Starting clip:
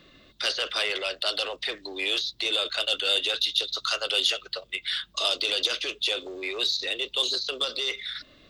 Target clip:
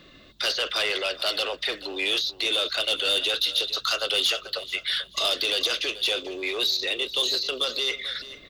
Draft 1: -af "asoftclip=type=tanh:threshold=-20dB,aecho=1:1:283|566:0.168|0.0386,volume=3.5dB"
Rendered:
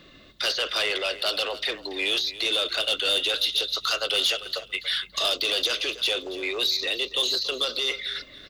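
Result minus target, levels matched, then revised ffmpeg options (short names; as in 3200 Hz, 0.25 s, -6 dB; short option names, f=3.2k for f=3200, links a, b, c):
echo 0.153 s early
-af "asoftclip=type=tanh:threshold=-20dB,aecho=1:1:436|872:0.168|0.0386,volume=3.5dB"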